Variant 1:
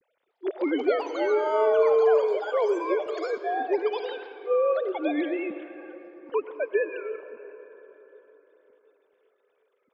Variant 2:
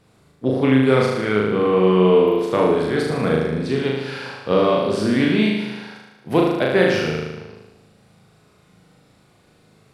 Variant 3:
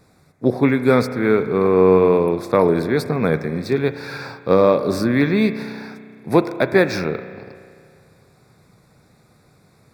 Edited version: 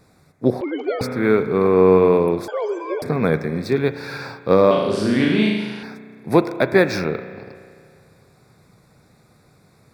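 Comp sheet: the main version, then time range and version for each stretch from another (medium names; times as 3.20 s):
3
0.61–1.01 s: from 1
2.48–3.02 s: from 1
4.71–5.83 s: from 2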